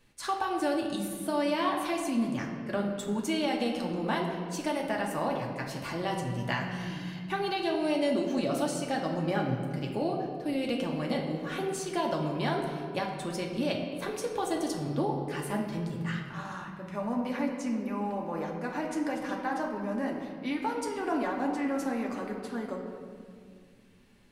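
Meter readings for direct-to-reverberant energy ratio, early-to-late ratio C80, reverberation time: −1.0 dB, 5.5 dB, 2.1 s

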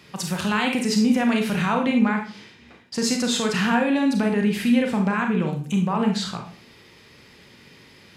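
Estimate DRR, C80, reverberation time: 2.5 dB, 12.0 dB, 0.40 s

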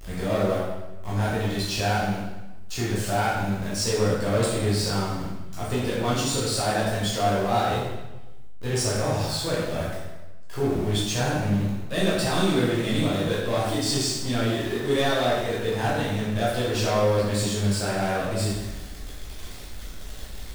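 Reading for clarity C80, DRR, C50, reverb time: 2.5 dB, −7.5 dB, 0.0 dB, 1.1 s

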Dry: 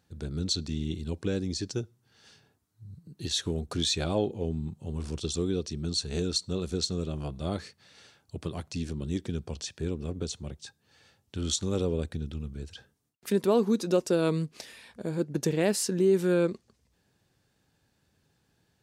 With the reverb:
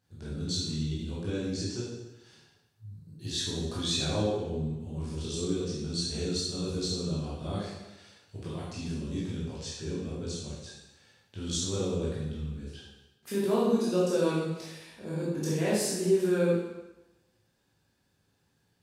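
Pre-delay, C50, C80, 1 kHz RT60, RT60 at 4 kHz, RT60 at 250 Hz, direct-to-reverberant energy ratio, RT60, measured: 14 ms, −1.0 dB, 2.5 dB, 1.0 s, 0.95 s, 1.0 s, −8.0 dB, 1.0 s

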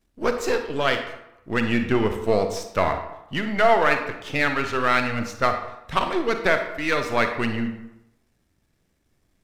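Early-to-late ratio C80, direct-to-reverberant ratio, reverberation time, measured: 10.0 dB, 6.0 dB, 0.90 s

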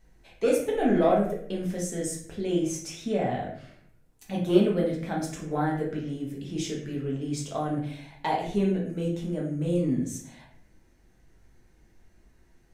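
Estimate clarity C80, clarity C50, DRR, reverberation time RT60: 9.0 dB, 5.0 dB, −3.5 dB, 0.60 s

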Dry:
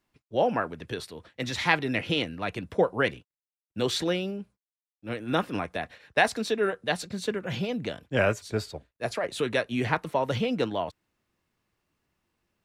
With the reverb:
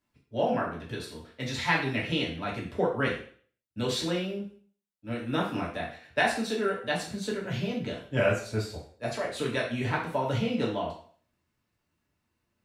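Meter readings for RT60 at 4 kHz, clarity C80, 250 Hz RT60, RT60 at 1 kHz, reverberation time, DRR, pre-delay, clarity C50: 0.45 s, 10.5 dB, 0.50 s, 0.45 s, 0.50 s, −3.5 dB, 3 ms, 6.0 dB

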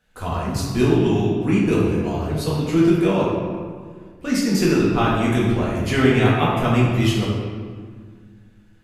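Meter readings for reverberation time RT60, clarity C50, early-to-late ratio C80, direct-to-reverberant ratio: 1.8 s, −0.5 dB, 2.0 dB, −6.5 dB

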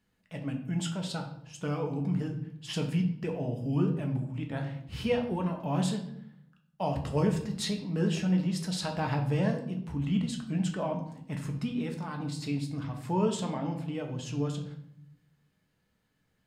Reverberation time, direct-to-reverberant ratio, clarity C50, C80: 0.70 s, 3.0 dB, 8.5 dB, 11.5 dB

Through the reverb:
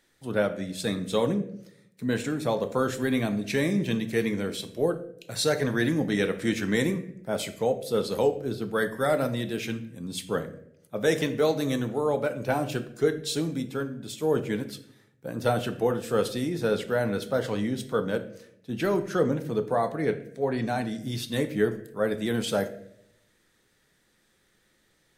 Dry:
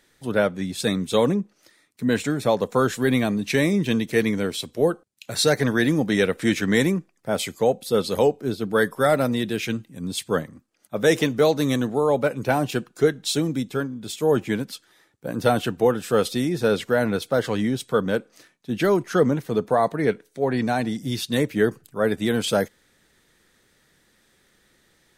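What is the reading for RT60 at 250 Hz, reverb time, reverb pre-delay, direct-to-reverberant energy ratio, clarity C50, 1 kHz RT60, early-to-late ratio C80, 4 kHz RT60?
0.90 s, 0.75 s, 6 ms, 8.5 dB, 12.5 dB, 0.60 s, 16.0 dB, 0.50 s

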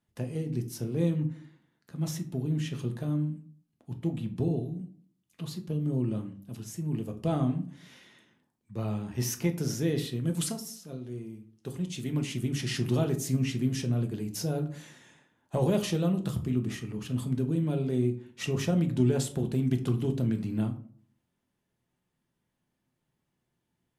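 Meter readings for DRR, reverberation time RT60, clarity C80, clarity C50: 5.0 dB, 0.50 s, 17.0 dB, 13.0 dB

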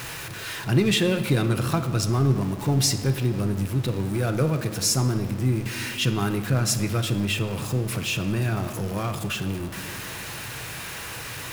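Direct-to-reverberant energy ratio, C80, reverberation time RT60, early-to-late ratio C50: 7.5 dB, 11.5 dB, 2.2 s, 10.0 dB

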